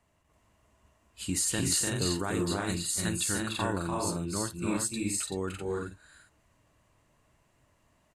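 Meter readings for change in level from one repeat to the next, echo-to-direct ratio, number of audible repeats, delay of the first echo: no steady repeat, 1.0 dB, 4, 53 ms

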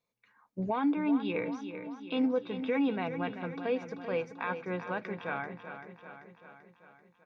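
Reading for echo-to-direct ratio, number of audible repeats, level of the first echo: -8.0 dB, 6, -10.0 dB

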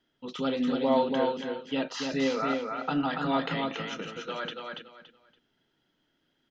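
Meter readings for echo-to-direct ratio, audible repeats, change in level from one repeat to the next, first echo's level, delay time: -3.5 dB, 3, -12.5 dB, -4.0 dB, 0.284 s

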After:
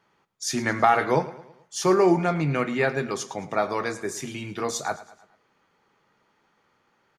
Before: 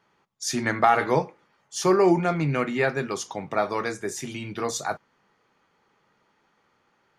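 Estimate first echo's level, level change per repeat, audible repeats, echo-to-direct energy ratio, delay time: -17.0 dB, -6.5 dB, 3, -16.0 dB, 0.109 s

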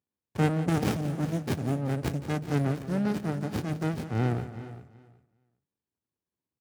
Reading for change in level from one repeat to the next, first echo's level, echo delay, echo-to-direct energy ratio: no steady repeat, -14.0 dB, 0.174 s, -10.5 dB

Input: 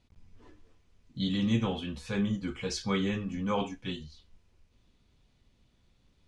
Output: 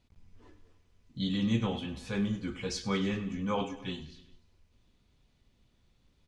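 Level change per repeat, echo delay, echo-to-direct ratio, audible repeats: -4.5 dB, 0.1 s, -13.5 dB, 4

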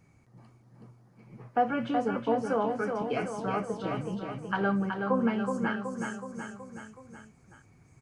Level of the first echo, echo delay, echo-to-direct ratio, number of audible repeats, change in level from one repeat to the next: -5.0 dB, 0.373 s, -3.0 dB, 5, -4.5 dB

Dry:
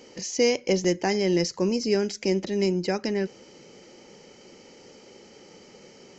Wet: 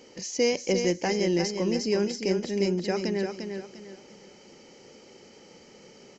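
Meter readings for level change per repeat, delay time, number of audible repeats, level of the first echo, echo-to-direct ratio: -10.0 dB, 0.349 s, 3, -6.5 dB, -6.0 dB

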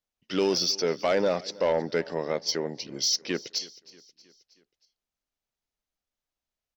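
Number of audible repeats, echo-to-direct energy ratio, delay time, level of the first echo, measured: 3, -20.0 dB, 0.317 s, -21.5 dB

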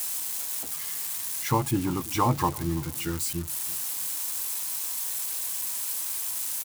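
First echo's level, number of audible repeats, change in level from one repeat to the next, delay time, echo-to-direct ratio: -21.5 dB, 2, -9.0 dB, 0.331 s, -21.0 dB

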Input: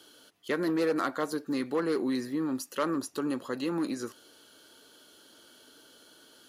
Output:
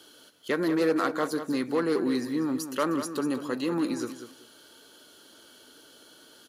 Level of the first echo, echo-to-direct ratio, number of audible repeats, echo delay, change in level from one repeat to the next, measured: -10.0 dB, -10.0 dB, 2, 0.192 s, -14.0 dB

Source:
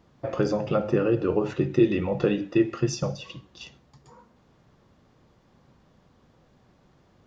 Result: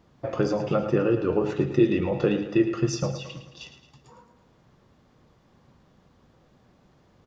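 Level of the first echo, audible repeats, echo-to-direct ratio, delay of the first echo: -11.0 dB, 5, -9.5 dB, 0.11 s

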